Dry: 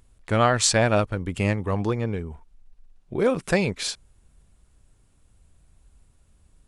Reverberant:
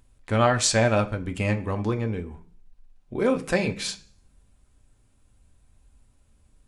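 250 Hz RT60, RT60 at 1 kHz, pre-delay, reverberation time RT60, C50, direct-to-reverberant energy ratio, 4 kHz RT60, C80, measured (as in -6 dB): 0.70 s, 0.40 s, 3 ms, 0.45 s, 16.5 dB, 4.5 dB, 0.50 s, 20.0 dB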